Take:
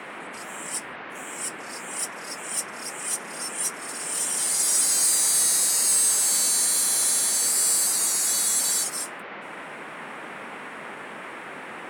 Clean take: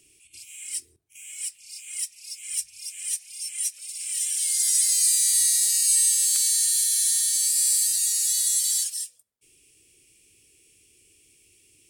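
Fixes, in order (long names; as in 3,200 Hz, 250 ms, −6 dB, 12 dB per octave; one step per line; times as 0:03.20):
clipped peaks rebuilt −15 dBFS
noise reduction from a noise print 21 dB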